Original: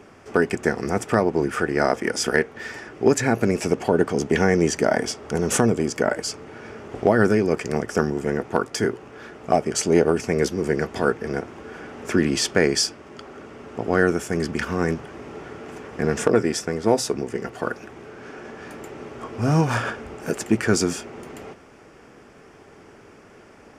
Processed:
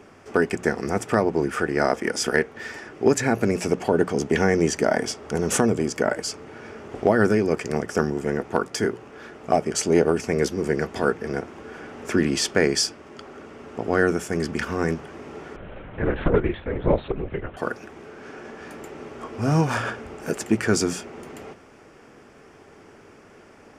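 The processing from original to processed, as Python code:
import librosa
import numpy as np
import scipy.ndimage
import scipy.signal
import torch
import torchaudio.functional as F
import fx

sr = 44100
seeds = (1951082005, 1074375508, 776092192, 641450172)

y = fx.hum_notches(x, sr, base_hz=60, count=3)
y = fx.lpc_vocoder(y, sr, seeds[0], excitation='whisper', order=8, at=(15.56, 17.57))
y = y * 10.0 ** (-1.0 / 20.0)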